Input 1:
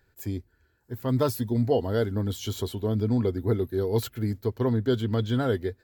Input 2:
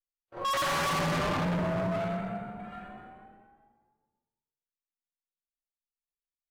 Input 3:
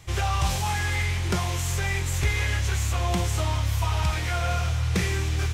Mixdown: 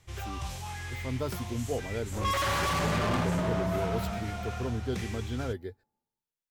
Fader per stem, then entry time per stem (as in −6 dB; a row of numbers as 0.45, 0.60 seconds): −9.5, −0.5, −12.5 decibels; 0.00, 1.80, 0.00 seconds